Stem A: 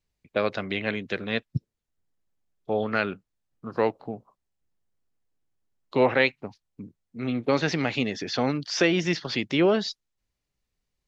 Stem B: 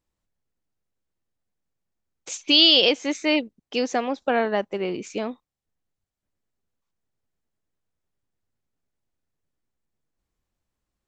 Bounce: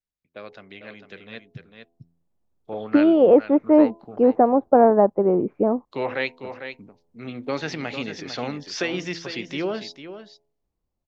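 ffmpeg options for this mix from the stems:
-filter_complex "[0:a]lowshelf=f=200:g=-4,bandreject=f=84.16:t=h:w=4,bandreject=f=168.32:t=h:w=4,bandreject=f=252.48:t=h:w=4,bandreject=f=336.64:t=h:w=4,bandreject=f=420.8:t=h:w=4,bandreject=f=504.96:t=h:w=4,bandreject=f=589.12:t=h:w=4,bandreject=f=673.28:t=h:w=4,bandreject=f=757.44:t=h:w=4,bandreject=f=841.6:t=h:w=4,bandreject=f=925.76:t=h:w=4,bandreject=f=1009.92:t=h:w=4,volume=0.211,asplit=2[s0][s1];[s1]volume=0.335[s2];[1:a]lowpass=f=1000:w=0.5412,lowpass=f=1000:w=1.3066,adelay=450,volume=0.944[s3];[s2]aecho=0:1:450:1[s4];[s0][s3][s4]amix=inputs=3:normalize=0,dynaudnorm=f=340:g=11:m=3.35"

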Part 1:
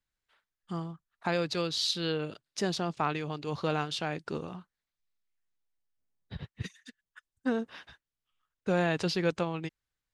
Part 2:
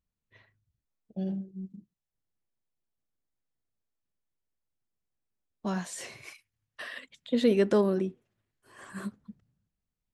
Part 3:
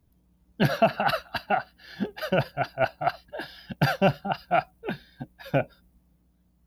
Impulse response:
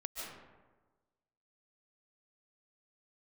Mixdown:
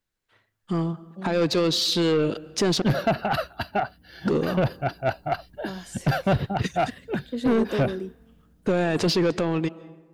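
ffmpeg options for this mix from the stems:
-filter_complex "[0:a]alimiter=level_in=1.19:limit=0.0631:level=0:latency=1:release=13,volume=0.841,dynaudnorm=f=200:g=7:m=2.66,volume=1.33,asplit=3[s0][s1][s2];[s0]atrim=end=2.82,asetpts=PTS-STARTPTS,afade=t=out:st=2.816:d=0.004:c=hsin[s3];[s1]atrim=start=2.82:end=4.25,asetpts=PTS-STARTPTS,volume=0[s4];[s2]atrim=start=4.25,asetpts=PTS-STARTPTS,afade=t=in:d=0.004:c=hsin[s5];[s3][s4][s5]concat=n=3:v=0:a=1,asplit=2[s6][s7];[s7]volume=0.112[s8];[1:a]aemphasis=mode=production:type=cd,volume=0.398[s9];[2:a]equalizer=f=89:t=o:w=1.2:g=11,adelay=2250,volume=0.891[s10];[3:a]atrim=start_sample=2205[s11];[s8][s11]afir=irnorm=-1:irlink=0[s12];[s6][s9][s10][s12]amix=inputs=4:normalize=0,equalizer=f=340:t=o:w=1.8:g=6.5,asoftclip=type=tanh:threshold=0.168"

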